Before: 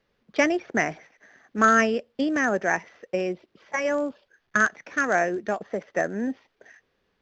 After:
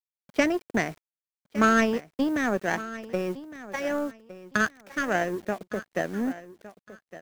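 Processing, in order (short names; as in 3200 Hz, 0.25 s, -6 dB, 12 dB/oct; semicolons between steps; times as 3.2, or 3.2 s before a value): low shelf 270 Hz +11.5 dB; in parallel at -2.5 dB: compressor 4:1, threshold -34 dBFS, peak gain reduction 18 dB; on the sum: power-law curve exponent 1.4; bit-crush 8-bit; feedback echo 1.161 s, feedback 23%, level -16 dB; gain -2.5 dB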